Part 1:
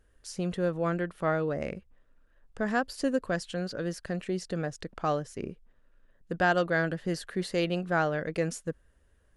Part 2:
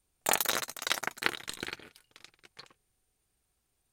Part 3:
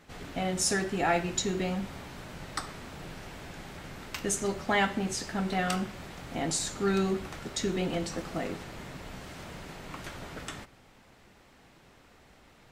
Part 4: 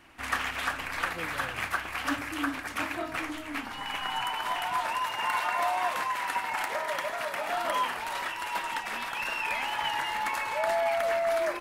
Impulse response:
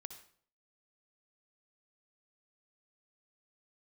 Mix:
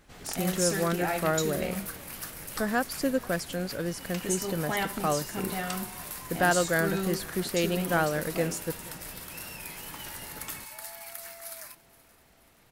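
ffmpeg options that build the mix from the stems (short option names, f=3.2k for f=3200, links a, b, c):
-filter_complex "[0:a]volume=0.5dB,asplit=2[a][b];[b]volume=-23.5dB[c];[1:a]volume=-14.5dB[d];[2:a]volume=-4.5dB[e];[3:a]highpass=1k,highshelf=f=5.6k:g=11,aexciter=amount=1.6:drive=8.4:freq=4.1k,adelay=150,volume=-16dB,asplit=2[f][g];[g]volume=-21dB[h];[c][h]amix=inputs=2:normalize=0,aecho=0:1:477|954|1431|1908|2385|2862|3339|3816:1|0.56|0.314|0.176|0.0983|0.0551|0.0308|0.0173[i];[a][d][e][f][i]amix=inputs=5:normalize=0,highshelf=f=7.2k:g=7"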